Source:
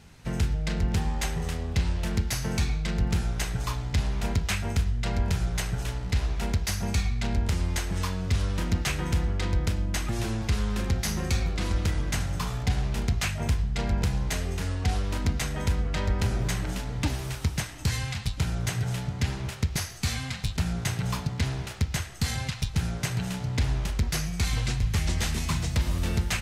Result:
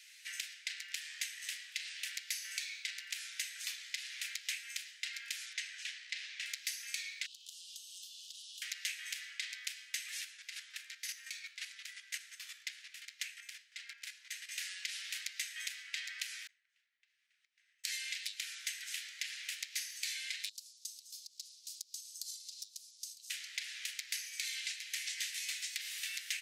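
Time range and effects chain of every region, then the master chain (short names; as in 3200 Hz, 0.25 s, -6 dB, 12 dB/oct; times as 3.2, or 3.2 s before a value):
5.53–6.46 air absorption 87 m + notch 1400 Hz, Q 16
7.26–8.62 steep high-pass 2900 Hz 96 dB/oct + compressor 12:1, threshold -49 dBFS
10.21–14.49 tilt shelf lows +6 dB, about 930 Hz + chopper 5.7 Hz, depth 60%, duty 20%
16.47–17.84 compressor 4:1, threshold -37 dBFS + double band-pass 330 Hz, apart 1.1 oct
20.49–23.3 elliptic band-stop 160–4700 Hz, stop band 50 dB + compressor, threshold -38 dBFS
whole clip: steep high-pass 1800 Hz 48 dB/oct; compressor 5:1, threshold -40 dBFS; gain +3 dB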